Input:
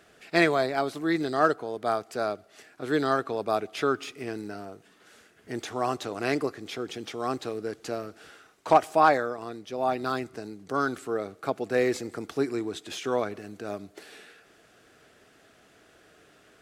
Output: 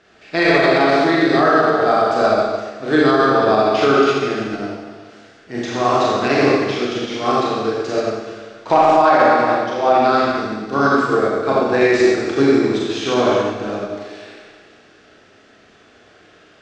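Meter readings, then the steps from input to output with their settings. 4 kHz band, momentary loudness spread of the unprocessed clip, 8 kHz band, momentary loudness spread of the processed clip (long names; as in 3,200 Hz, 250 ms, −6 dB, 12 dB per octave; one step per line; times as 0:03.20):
+13.0 dB, 16 LU, +8.0 dB, 12 LU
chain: low-pass filter 6,100 Hz 24 dB per octave
four-comb reverb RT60 1.8 s, combs from 29 ms, DRR −6.5 dB
boost into a limiter +12 dB
expander for the loud parts 1.5 to 1, over −22 dBFS
level −2.5 dB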